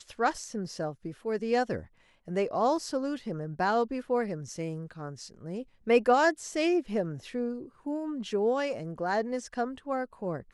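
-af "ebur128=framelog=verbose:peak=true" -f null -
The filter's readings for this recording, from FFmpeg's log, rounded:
Integrated loudness:
  I:         -30.5 LUFS
  Threshold: -40.8 LUFS
Loudness range:
  LRA:         3.6 LU
  Threshold: -50.3 LUFS
  LRA low:   -32.3 LUFS
  LRA high:  -28.7 LUFS
True peak:
  Peak:      -11.4 dBFS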